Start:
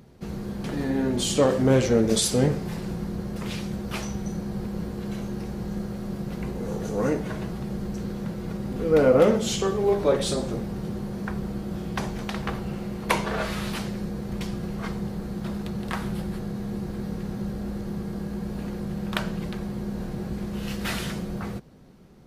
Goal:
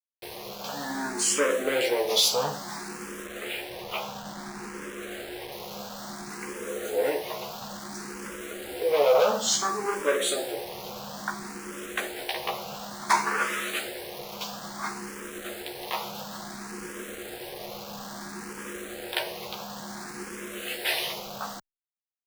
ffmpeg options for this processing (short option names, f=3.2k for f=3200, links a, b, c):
-filter_complex "[0:a]asoftclip=type=hard:threshold=-18.5dB,highpass=600,asplit=2[a][b];[b]adelay=14,volume=-3.5dB[c];[a][c]amix=inputs=2:normalize=0,asettb=1/sr,asplit=3[d][e][f];[d]atrim=end=3.264[g];[e]atrim=start=3.26:end=5.52,asetpts=PTS-STARTPTS,afade=t=in:d=0.004:c=qsin,afade=t=out:st=2.256:d=0.004:c=qsin,lowpass=f=3.2k:w=0.5412,lowpass=f=3.2k:w=1.3066[h];[f]atrim=start=5.516[i];[g][h]acrossfade=d=0.004:c1=hsin:c2=qsin[j];[j][i]acrossfade=d=0.004:c1=qsin:c2=hsin,acrusher=bits=6:mix=0:aa=0.000001,asplit=2[k][l];[l]afreqshift=0.58[m];[k][m]amix=inputs=2:normalize=1,volume=5.5dB"